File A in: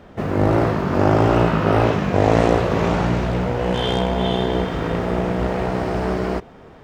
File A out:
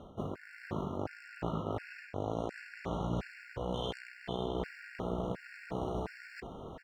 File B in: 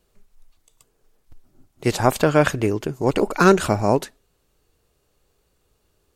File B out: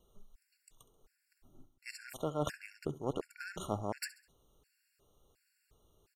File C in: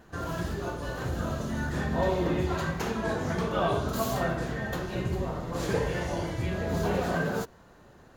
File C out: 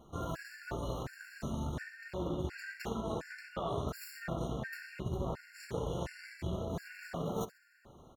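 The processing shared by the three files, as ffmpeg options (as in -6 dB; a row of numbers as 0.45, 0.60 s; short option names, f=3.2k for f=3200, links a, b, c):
-af "areverse,acompressor=threshold=-32dB:ratio=10,areverse,aecho=1:1:67|134|201|268:0.178|0.0747|0.0314|0.0132,aeval=exprs='0.133*(cos(1*acos(clip(val(0)/0.133,-1,1)))-cos(1*PI/2))+0.00668*(cos(5*acos(clip(val(0)/0.133,-1,1)))-cos(5*PI/2))+0.0119*(cos(7*acos(clip(val(0)/0.133,-1,1)))-cos(7*PI/2))':c=same,afftfilt=real='re*gt(sin(2*PI*1.4*pts/sr)*(1-2*mod(floor(b*sr/1024/1400),2)),0)':imag='im*gt(sin(2*PI*1.4*pts/sr)*(1-2*mod(floor(b*sr/1024/1400),2)),0)':win_size=1024:overlap=0.75,volume=1.5dB"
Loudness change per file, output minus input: -20.0, -21.0, -9.5 LU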